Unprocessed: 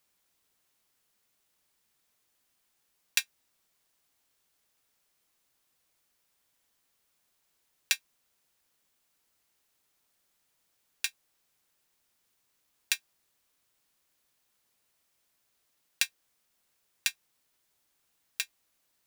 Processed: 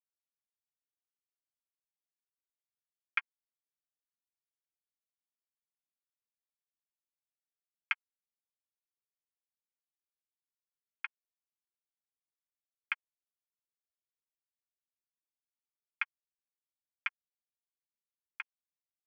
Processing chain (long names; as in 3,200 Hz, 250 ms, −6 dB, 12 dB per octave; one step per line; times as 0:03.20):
parametric band 2,300 Hz −3 dB 2.1 octaves
dead-zone distortion −33 dBFS
ring modulation 470 Hz
single-sideband voice off tune +220 Hz 500–2,800 Hz
phaser with its sweep stopped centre 1,600 Hz, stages 4
level +12.5 dB